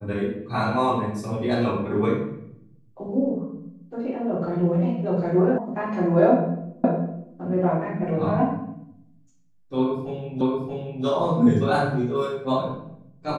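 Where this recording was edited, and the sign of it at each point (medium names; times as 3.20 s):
5.58 s: sound stops dead
6.84 s: repeat of the last 0.51 s
10.41 s: repeat of the last 0.63 s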